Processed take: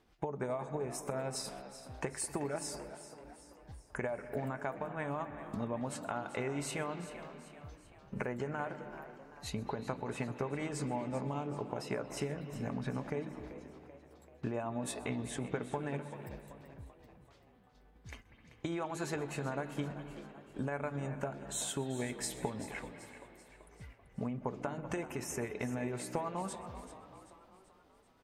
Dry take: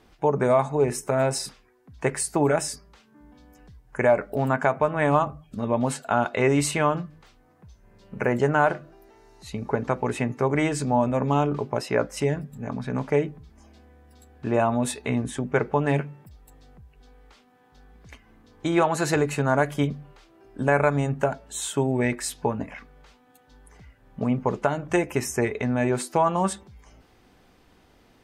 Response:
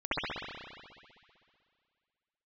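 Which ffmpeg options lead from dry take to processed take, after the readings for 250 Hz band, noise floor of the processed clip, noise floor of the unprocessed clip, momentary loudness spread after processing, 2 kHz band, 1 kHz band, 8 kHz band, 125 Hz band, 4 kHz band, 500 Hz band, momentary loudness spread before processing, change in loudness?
-13.0 dB, -63 dBFS, -59 dBFS, 16 LU, -14.5 dB, -15.5 dB, -10.0 dB, -13.5 dB, -10.0 dB, -15.5 dB, 11 LU, -15.0 dB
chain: -filter_complex "[0:a]agate=range=0.282:threshold=0.00355:ratio=16:detection=peak,acompressor=threshold=0.0224:ratio=10,tremolo=f=9.4:d=0.34,asplit=6[s0][s1][s2][s3][s4][s5];[s1]adelay=386,afreqshift=63,volume=0.211[s6];[s2]adelay=772,afreqshift=126,volume=0.106[s7];[s3]adelay=1158,afreqshift=189,volume=0.0531[s8];[s4]adelay=1544,afreqshift=252,volume=0.0263[s9];[s5]adelay=1930,afreqshift=315,volume=0.0132[s10];[s0][s6][s7][s8][s9][s10]amix=inputs=6:normalize=0,asplit=2[s11][s12];[1:a]atrim=start_sample=2205,highshelf=f=6400:g=12,adelay=128[s13];[s12][s13]afir=irnorm=-1:irlink=0,volume=0.0708[s14];[s11][s14]amix=inputs=2:normalize=0"

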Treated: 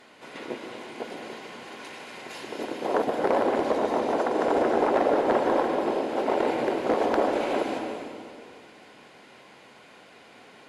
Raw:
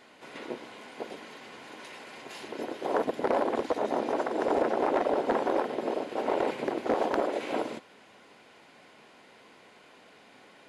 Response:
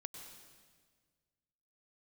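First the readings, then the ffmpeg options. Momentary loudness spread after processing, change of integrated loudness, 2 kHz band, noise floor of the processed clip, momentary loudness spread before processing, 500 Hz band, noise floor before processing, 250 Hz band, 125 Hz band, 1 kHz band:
17 LU, +4.0 dB, +4.0 dB, -52 dBFS, 17 LU, +4.5 dB, -56 dBFS, +4.5 dB, +5.0 dB, +4.5 dB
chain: -filter_complex "[1:a]atrim=start_sample=2205,asetrate=31752,aresample=44100[s0];[0:a][s0]afir=irnorm=-1:irlink=0,volume=2"

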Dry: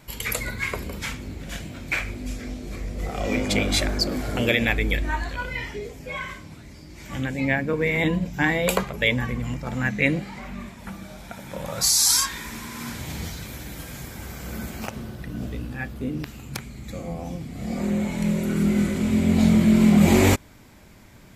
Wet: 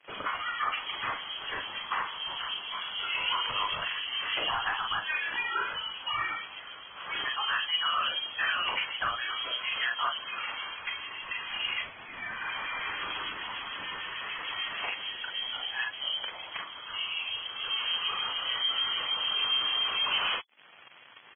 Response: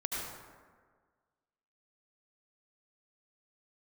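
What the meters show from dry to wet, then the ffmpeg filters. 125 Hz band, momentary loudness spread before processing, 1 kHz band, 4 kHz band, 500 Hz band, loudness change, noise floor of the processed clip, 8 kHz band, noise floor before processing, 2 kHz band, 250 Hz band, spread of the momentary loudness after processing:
-31.0 dB, 19 LU, +1.0 dB, +3.0 dB, -18.5 dB, -7.0 dB, -48 dBFS, under -40 dB, -46 dBFS, -3.5 dB, -33.0 dB, 9 LU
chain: -filter_complex "[0:a]highpass=f=750:p=1,flanger=delay=0.8:depth=7.9:regen=-25:speed=1.1:shape=sinusoidal,acompressor=threshold=0.0112:ratio=2.5,aecho=1:1:40|50:0.531|0.355,acrossover=split=1500[s0][s1];[s0]aeval=exprs='val(0)*(1-0.5/2+0.5/2*cos(2*PI*6.7*n/s))':c=same[s2];[s1]aeval=exprs='val(0)*(1-0.5/2-0.5/2*cos(2*PI*6.7*n/s))':c=same[s3];[s2][s3]amix=inputs=2:normalize=0,acrusher=bits=8:mix=0:aa=0.000001,asoftclip=type=tanh:threshold=0.0188,acontrast=31,lowpass=f=2900:t=q:w=0.5098,lowpass=f=2900:t=q:w=0.6013,lowpass=f=2900:t=q:w=0.9,lowpass=f=2900:t=q:w=2.563,afreqshift=-3400,volume=2.11" -ar 22050 -c:a libvorbis -b:a 16k

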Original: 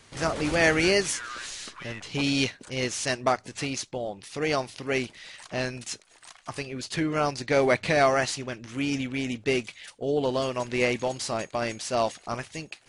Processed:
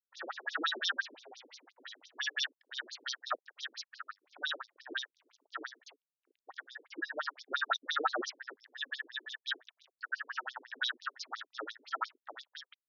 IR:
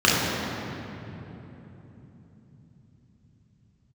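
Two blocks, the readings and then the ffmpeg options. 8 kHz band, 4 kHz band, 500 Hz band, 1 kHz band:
-17.5 dB, -5.5 dB, -22.5 dB, -9.5 dB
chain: -af "afftfilt=real='real(if(between(b,1,1012),(2*floor((b-1)/92)+1)*92-b,b),0)':imag='imag(if(between(b,1,1012),(2*floor((b-1)/92)+1)*92-b,b),0)*if(between(b,1,1012),-1,1)':win_size=2048:overlap=0.75,aeval=exprs='sgn(val(0))*max(abs(val(0))-0.00841,0)':c=same,afftfilt=real='re*between(b*sr/1024,320*pow(4900/320,0.5+0.5*sin(2*PI*5.8*pts/sr))/1.41,320*pow(4900/320,0.5+0.5*sin(2*PI*5.8*pts/sr))*1.41)':imag='im*between(b*sr/1024,320*pow(4900/320,0.5+0.5*sin(2*PI*5.8*pts/sr))/1.41,320*pow(4900/320,0.5+0.5*sin(2*PI*5.8*pts/sr))*1.41)':win_size=1024:overlap=0.75,volume=0.708"

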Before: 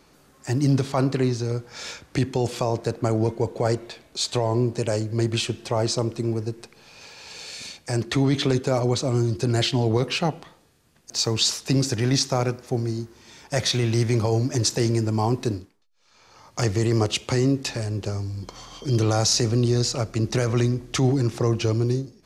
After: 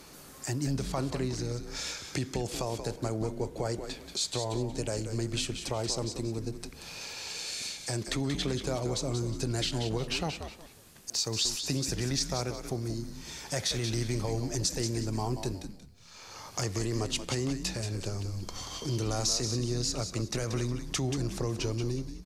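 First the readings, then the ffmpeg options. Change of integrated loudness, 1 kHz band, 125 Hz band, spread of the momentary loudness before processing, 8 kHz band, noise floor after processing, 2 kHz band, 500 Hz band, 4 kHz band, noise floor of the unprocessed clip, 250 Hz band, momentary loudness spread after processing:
-9.0 dB, -9.5 dB, -10.0 dB, 12 LU, -4.0 dB, -50 dBFS, -7.0 dB, -10.0 dB, -6.0 dB, -57 dBFS, -9.5 dB, 9 LU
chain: -filter_complex "[0:a]aemphasis=mode=production:type=cd,acompressor=threshold=0.00562:ratio=2,asplit=5[s0][s1][s2][s3][s4];[s1]adelay=182,afreqshift=-90,volume=0.398[s5];[s2]adelay=364,afreqshift=-180,volume=0.119[s6];[s3]adelay=546,afreqshift=-270,volume=0.0359[s7];[s4]adelay=728,afreqshift=-360,volume=0.0107[s8];[s0][s5][s6][s7][s8]amix=inputs=5:normalize=0,volume=1.58"

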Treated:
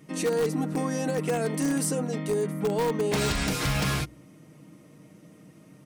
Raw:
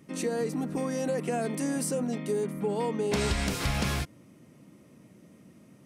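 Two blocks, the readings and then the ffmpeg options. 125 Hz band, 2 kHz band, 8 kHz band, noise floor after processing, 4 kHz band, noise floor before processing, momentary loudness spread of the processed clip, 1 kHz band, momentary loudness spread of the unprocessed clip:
+3.5 dB, +3.5 dB, +3.5 dB, -53 dBFS, +3.5 dB, -57 dBFS, 3 LU, +3.0 dB, 3 LU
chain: -filter_complex "[0:a]bandreject=f=60:t=h:w=6,bandreject=f=120:t=h:w=6,bandreject=f=180:t=h:w=6,bandreject=f=240:t=h:w=6,bandreject=f=300:t=h:w=6,bandreject=f=360:t=h:w=6,aecho=1:1:6.5:0.49,asplit=2[s0][s1];[s1]aeval=exprs='(mod(11.2*val(0)+1,2)-1)/11.2':c=same,volume=0.355[s2];[s0][s2]amix=inputs=2:normalize=0"

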